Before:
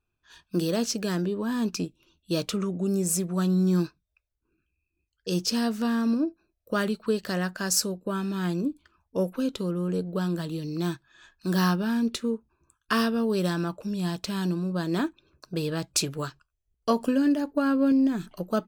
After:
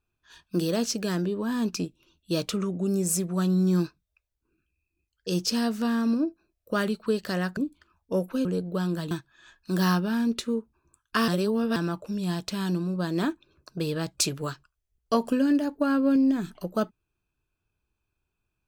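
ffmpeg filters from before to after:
ffmpeg -i in.wav -filter_complex "[0:a]asplit=6[link_01][link_02][link_03][link_04][link_05][link_06];[link_01]atrim=end=7.572[link_07];[link_02]atrim=start=8.608:end=9.492[link_08];[link_03]atrim=start=9.858:end=10.522[link_09];[link_04]atrim=start=10.868:end=13.042[link_10];[link_05]atrim=start=13.038:end=13.522,asetpts=PTS-STARTPTS,areverse[link_11];[link_06]atrim=start=13.518[link_12];[link_07][link_08]acrossfade=duration=0.004:curve1=hsin:curve2=hsin[link_13];[link_13][link_09]acrossfade=duration=0.004:curve1=hsin:curve2=hsin[link_14];[link_14][link_10]acrossfade=duration=0.004:curve1=hsin:curve2=hsin[link_15];[link_15][link_11]acrossfade=duration=0.004:curve1=hsin:curve2=hsin[link_16];[link_16][link_12]acrossfade=duration=0.004:curve1=hsin:curve2=hsin" out.wav

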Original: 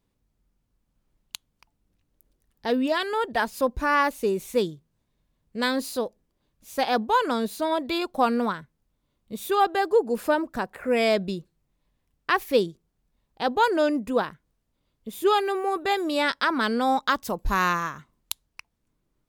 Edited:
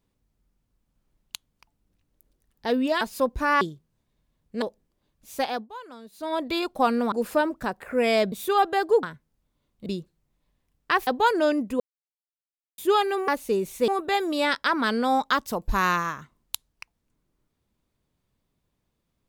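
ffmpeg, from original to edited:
ffmpeg -i in.wav -filter_complex "[0:a]asplit=15[link_01][link_02][link_03][link_04][link_05][link_06][link_07][link_08][link_09][link_10][link_11][link_12][link_13][link_14][link_15];[link_01]atrim=end=3.012[link_16];[link_02]atrim=start=3.418:end=4.022[link_17];[link_03]atrim=start=4.618:end=5.632[link_18];[link_04]atrim=start=6.008:end=7.06,asetpts=PTS-STARTPTS,afade=type=out:start_time=0.742:duration=0.31:silence=0.11885[link_19];[link_05]atrim=start=7.06:end=7.51,asetpts=PTS-STARTPTS,volume=-18.5dB[link_20];[link_06]atrim=start=7.51:end=8.512,asetpts=PTS-STARTPTS,afade=type=in:duration=0.31:silence=0.11885[link_21];[link_07]atrim=start=10.048:end=11.252[link_22];[link_08]atrim=start=9.338:end=10.052[link_23];[link_09]atrim=start=8.508:end=9.342[link_24];[link_10]atrim=start=11.248:end=12.462[link_25];[link_11]atrim=start=13.438:end=14.17,asetpts=PTS-STARTPTS,afade=type=out:start_time=0.728:duration=0.004:curve=hsin[link_26];[link_12]atrim=start=14.17:end=15.15,asetpts=PTS-STARTPTS,volume=0[link_27];[link_13]atrim=start=15.15:end=15.652,asetpts=PTS-STARTPTS,afade=type=in:duration=0.004:curve=hsin[link_28];[link_14]atrim=start=4.018:end=4.622[link_29];[link_15]atrim=start=15.648[link_30];[link_16][link_17]acrossfade=duration=0.004:curve1=hsin:curve2=hsin[link_31];[link_31][link_18]acrossfade=duration=0.004:curve1=hsin:curve2=hsin[link_32];[link_19][link_20][link_21]concat=n=3:v=0:a=1[link_33];[link_32][link_33]acrossfade=duration=0.004:curve1=hsin:curve2=hsin[link_34];[link_34][link_22]acrossfade=duration=0.004:curve1=hsin:curve2=hsin[link_35];[link_35][link_23]acrossfade=duration=0.004:curve1=hsin:curve2=hsin[link_36];[link_36][link_24]acrossfade=duration=0.004:curve1=hsin:curve2=hsin[link_37];[link_37][link_25]acrossfade=duration=0.004:curve1=hsin:curve2=hsin[link_38];[link_26][link_27][link_28]concat=n=3:v=0:a=1[link_39];[link_38][link_39]acrossfade=duration=0.004:curve1=hsin:curve2=hsin[link_40];[link_40][link_29]acrossfade=duration=0.004:curve1=hsin:curve2=hsin[link_41];[link_41][link_30]acrossfade=duration=0.004:curve1=hsin:curve2=hsin" out.wav

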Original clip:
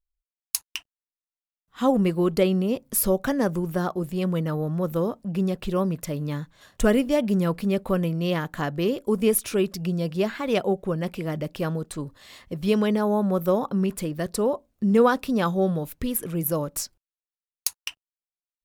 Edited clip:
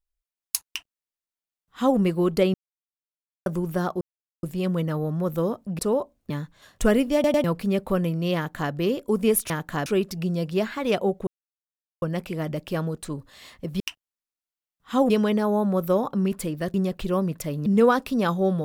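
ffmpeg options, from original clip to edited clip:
ffmpeg -i in.wav -filter_complex "[0:a]asplit=16[link_01][link_02][link_03][link_04][link_05][link_06][link_07][link_08][link_09][link_10][link_11][link_12][link_13][link_14][link_15][link_16];[link_01]atrim=end=2.54,asetpts=PTS-STARTPTS,afade=type=out:start_time=2.536:duration=0.004:curve=hsin[link_17];[link_02]atrim=start=2.54:end=3.46,asetpts=PTS-STARTPTS,volume=0[link_18];[link_03]atrim=start=3.46:end=4.01,asetpts=PTS-STARTPTS,afade=type=in:duration=0.004:curve=hsin,afade=type=out:start_time=0.546:duration=0.004:curve=hsin,apad=pad_dur=0.42[link_19];[link_04]atrim=start=4.01:end=5.372,asetpts=PTS-STARTPTS,afade=type=in:duration=0.004:curve=hsin[link_20];[link_05]atrim=start=14.318:end=14.832[link_21];[link_06]atrim=start=6.288:end=7.232[link_22];[link_07]atrim=start=7.128:end=7.232[link_23];[link_08]atrim=start=7.128:end=7.232[link_24];[link_09]atrim=start=7.428:end=9.492[link_25];[link_10]atrim=start=8.348:end=8.712[link_26];[link_11]atrim=start=9.488:end=10.9,asetpts=PTS-STARTPTS,afade=type=out:start_time=1.408:duration=0.004:curve=hsin,apad=pad_dur=0.75[link_27];[link_12]atrim=start=10.9:end=12.682,asetpts=PTS-STARTPTS,afade=type=in:duration=0.004:curve=hsin[link_28];[link_13]atrim=start=0.678:end=1.982[link_29];[link_14]atrim=start=12.678:end=14.322[link_30];[link_15]atrim=start=5.368:end=6.292[link_31];[link_16]atrim=start=14.828[link_32];[link_17][link_18][link_19][link_20]concat=n=4:v=0:a=1[link_33];[link_33][link_21]acrossfade=duration=0.004:curve1=hsin:curve2=hsin[link_34];[link_34][link_22]acrossfade=duration=0.004:curve1=hsin:curve2=hsin[link_35];[link_35][link_23]acrossfade=duration=0.004:curve1=hsin:curve2=hsin[link_36];[link_36][link_24]acrossfade=duration=0.004:curve1=hsin:curve2=hsin[link_37];[link_37][link_25]acrossfade=duration=0.004:curve1=hsin:curve2=hsin[link_38];[link_38][link_26]acrossfade=duration=0.004:curve1=hsin:curve2=hsin[link_39];[link_27][link_28]concat=n=2:v=0:a=1[link_40];[link_39][link_40]acrossfade=duration=0.004:curve1=hsin:curve2=hsin[link_41];[link_41][link_29]acrossfade=duration=0.004:curve1=hsin:curve2=hsin[link_42];[link_42][link_30]acrossfade=duration=0.004:curve1=hsin:curve2=hsin[link_43];[link_43][link_31]acrossfade=duration=0.004:curve1=hsin:curve2=hsin[link_44];[link_44][link_32]acrossfade=duration=0.004:curve1=hsin:curve2=hsin" out.wav

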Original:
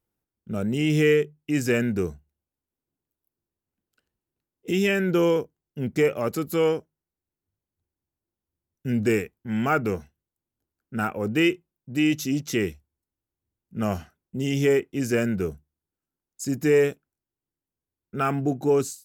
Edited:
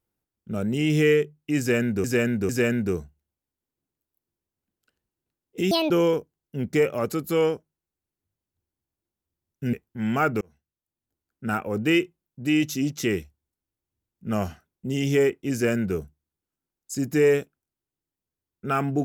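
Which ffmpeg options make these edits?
ffmpeg -i in.wav -filter_complex "[0:a]asplit=7[link_01][link_02][link_03][link_04][link_05][link_06][link_07];[link_01]atrim=end=2.042[link_08];[link_02]atrim=start=1.588:end=2.042[link_09];[link_03]atrim=start=1.588:end=4.814[link_10];[link_04]atrim=start=4.81:end=5.13,asetpts=PTS-STARTPTS,asetrate=73647,aresample=44100,atrim=end_sample=8450,asetpts=PTS-STARTPTS[link_11];[link_05]atrim=start=5.126:end=8.962[link_12];[link_06]atrim=start=9.228:end=9.91,asetpts=PTS-STARTPTS,afade=type=out:start_time=0.678:duration=0.004:curve=hsin[link_13];[link_07]atrim=start=9.91,asetpts=PTS-STARTPTS,afade=type=in:duration=1.16:curve=qsin[link_14];[link_08][link_09]acrossfade=duration=0.004:curve1=hsin:curve2=hsin[link_15];[link_15][link_10]acrossfade=duration=0.004:curve1=hsin:curve2=hsin[link_16];[link_16][link_11]acrossfade=duration=0.004:curve1=hsin:curve2=hsin[link_17];[link_17][link_12]acrossfade=duration=0.004:curve1=hsin:curve2=hsin[link_18];[link_13][link_14]concat=n=2:v=0:a=1[link_19];[link_18][link_19]acrossfade=duration=0.004:curve1=hsin:curve2=hsin" out.wav

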